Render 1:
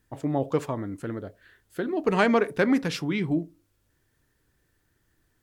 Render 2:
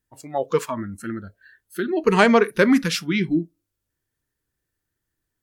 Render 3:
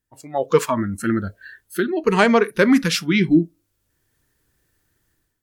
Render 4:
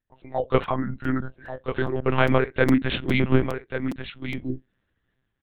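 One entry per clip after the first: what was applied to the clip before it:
spectral noise reduction 18 dB; treble shelf 5.2 kHz +6.5 dB; trim +6 dB
level rider gain up to 14 dB; trim -1 dB
delay 1140 ms -9 dB; monotone LPC vocoder at 8 kHz 130 Hz; crackling interface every 0.41 s, samples 256, repeat, from 0.63 s; trim -4 dB

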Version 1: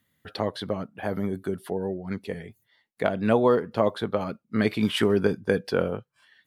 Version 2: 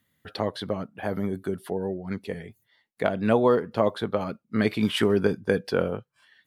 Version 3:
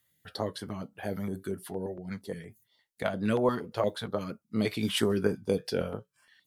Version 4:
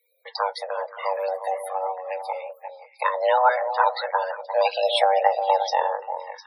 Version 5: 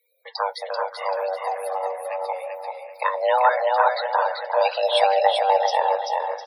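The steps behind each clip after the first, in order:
no audible change
flange 0.45 Hz, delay 5.6 ms, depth 4.6 ms, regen -66%; tone controls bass 0 dB, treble +8 dB; step-sequenced notch 8.6 Hz 230–3700 Hz
frequency shift +380 Hz; repeats whose band climbs or falls 176 ms, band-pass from 260 Hz, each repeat 1.4 oct, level -4 dB; loudest bins only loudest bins 64; trim +7.5 dB
feedback delay 387 ms, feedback 31%, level -4 dB

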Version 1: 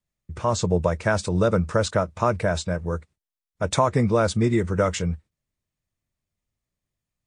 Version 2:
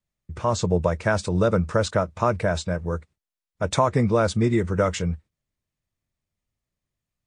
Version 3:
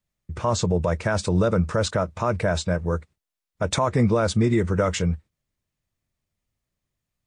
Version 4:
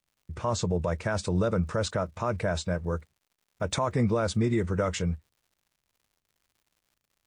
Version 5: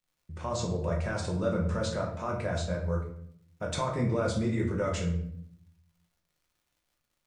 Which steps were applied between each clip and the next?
treble shelf 8.9 kHz -5.5 dB
peak limiter -13.5 dBFS, peak gain reduction 8 dB; trim +2.5 dB
crackle 150 per s -50 dBFS; trim -5.5 dB
reverberation RT60 0.65 s, pre-delay 6 ms, DRR -1.5 dB; trim -6.5 dB

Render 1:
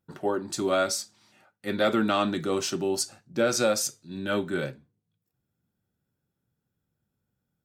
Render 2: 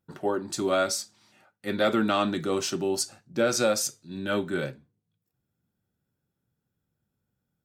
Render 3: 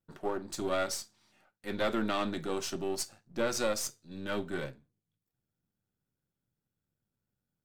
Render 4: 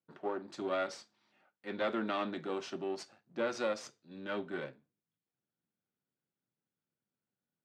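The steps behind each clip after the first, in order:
no audible change
partial rectifier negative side -7 dB; trim -4.5 dB
band-pass 200–3400 Hz; trim -2.5 dB

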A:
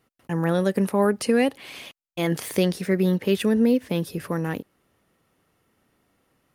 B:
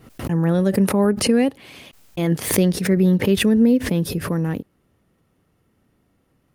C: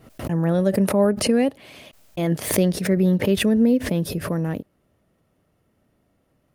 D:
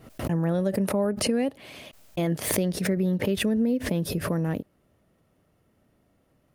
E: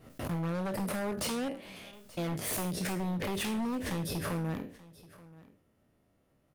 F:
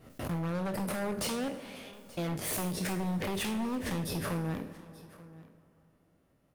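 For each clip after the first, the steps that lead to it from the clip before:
bass shelf 350 Hz +11.5 dB; swell ahead of each attack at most 99 dB/s; trim -3 dB
peaking EQ 620 Hz +8.5 dB 0.31 oct; trim -2.5 dB
compression 3:1, threshold -23 dBFS, peak gain reduction 8 dB
spectral sustain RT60 0.41 s; wavefolder -21.5 dBFS; delay 881 ms -20.5 dB; trim -6.5 dB
plate-style reverb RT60 3.2 s, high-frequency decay 0.6×, DRR 12.5 dB

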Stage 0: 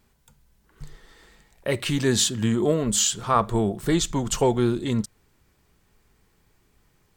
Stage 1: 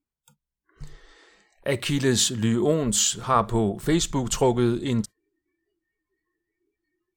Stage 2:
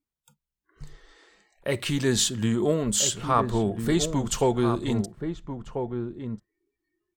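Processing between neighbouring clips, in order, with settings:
spectral noise reduction 28 dB
echo from a far wall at 230 m, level -7 dB; trim -2 dB

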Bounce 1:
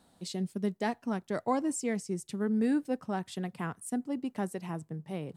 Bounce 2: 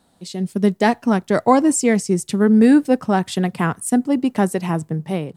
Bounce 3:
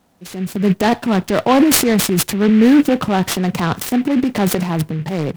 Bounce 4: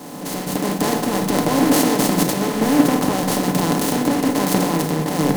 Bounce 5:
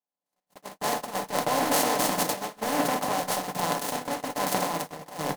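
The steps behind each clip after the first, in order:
level rider gain up to 12 dB; trim +4 dB
peaking EQ 4.1 kHz -5.5 dB 0.77 oct; transient shaper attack -3 dB, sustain +12 dB; delay time shaken by noise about 1.9 kHz, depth 0.048 ms; trim +1.5 dB
spectral levelling over time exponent 0.2; reverberation RT60 1.6 s, pre-delay 7 ms, DRR 3.5 dB; three bands expanded up and down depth 100%; trim -14 dB
resonant low shelf 470 Hz -8.5 dB, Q 1.5; echo from a far wall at 66 m, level -9 dB; gate -21 dBFS, range -56 dB; trim -5 dB

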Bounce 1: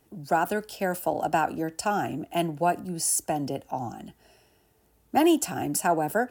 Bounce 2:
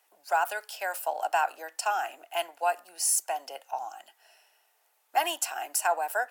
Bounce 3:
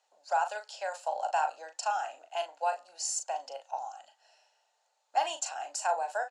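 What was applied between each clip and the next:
high-pass 690 Hz 24 dB/octave; peaking EQ 2.3 kHz +2.5 dB
cabinet simulation 240–7200 Hz, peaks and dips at 360 Hz -8 dB, 550 Hz +9 dB, 840 Hz +5 dB, 2.1 kHz -4 dB, 4.2 kHz +7 dB, 7 kHz +9 dB; doubling 38 ms -8 dB; trim -7 dB

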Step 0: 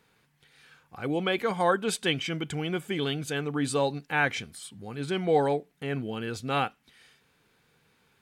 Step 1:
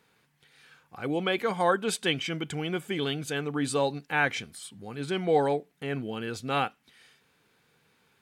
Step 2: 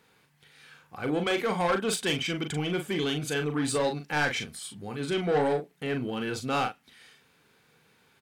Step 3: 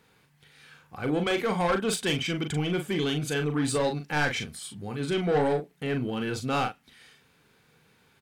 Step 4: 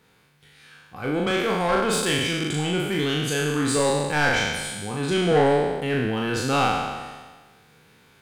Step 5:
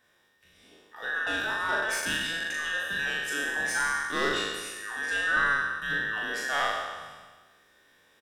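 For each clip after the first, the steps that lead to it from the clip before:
bass shelf 70 Hz -9.5 dB
saturation -24 dBFS, distortion -11 dB; doubling 40 ms -6.5 dB; trim +2.5 dB
bass shelf 150 Hz +7 dB
spectral sustain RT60 1.44 s; gain riding 2 s; trim +1.5 dB
every band turned upside down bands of 2 kHz; doubling 50 ms -11.5 dB; trim -7 dB

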